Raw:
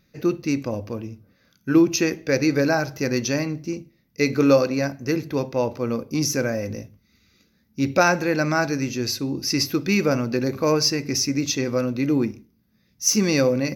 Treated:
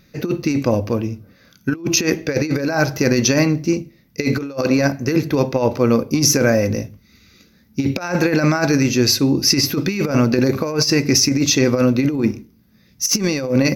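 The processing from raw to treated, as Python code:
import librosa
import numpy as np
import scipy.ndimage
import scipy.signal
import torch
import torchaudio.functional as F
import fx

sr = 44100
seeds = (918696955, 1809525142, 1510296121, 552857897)

y = fx.over_compress(x, sr, threshold_db=-23.0, ratio=-0.5)
y = y * 10.0 ** (7.5 / 20.0)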